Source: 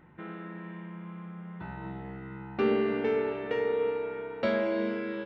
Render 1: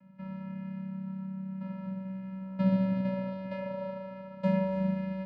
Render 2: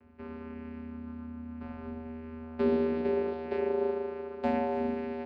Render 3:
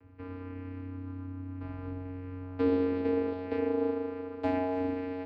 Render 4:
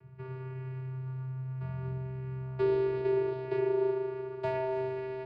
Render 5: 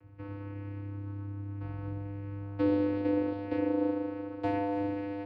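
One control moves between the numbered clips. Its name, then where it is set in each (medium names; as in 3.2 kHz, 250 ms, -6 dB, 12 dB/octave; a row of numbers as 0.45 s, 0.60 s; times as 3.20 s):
vocoder, frequency: 190 Hz, 80 Hz, 92 Hz, 130 Hz, 100 Hz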